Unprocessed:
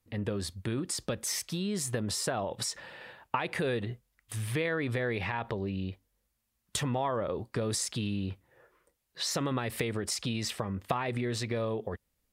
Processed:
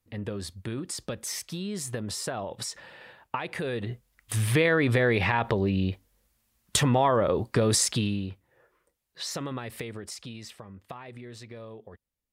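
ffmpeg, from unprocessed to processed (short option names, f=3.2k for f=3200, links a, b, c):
-af "volume=8.5dB,afade=t=in:st=3.71:d=0.63:silence=0.334965,afade=t=out:st=7.87:d=0.44:silence=0.298538,afade=t=out:st=9.28:d=1.31:silence=0.354813"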